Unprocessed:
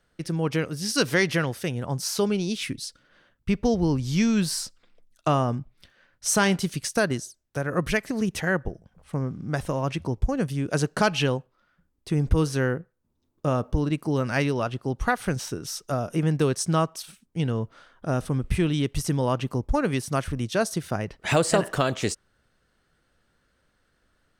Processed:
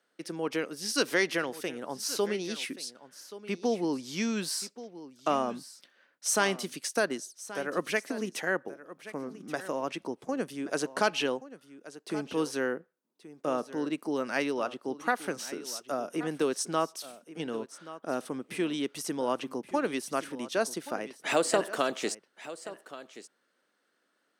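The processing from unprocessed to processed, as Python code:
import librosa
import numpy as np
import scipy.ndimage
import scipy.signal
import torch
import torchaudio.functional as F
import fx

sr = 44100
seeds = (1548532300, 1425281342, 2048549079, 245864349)

p1 = scipy.signal.sosfilt(scipy.signal.butter(4, 250.0, 'highpass', fs=sr, output='sos'), x)
p2 = p1 + fx.echo_single(p1, sr, ms=1128, db=-15.5, dry=0)
y = p2 * librosa.db_to_amplitude(-4.0)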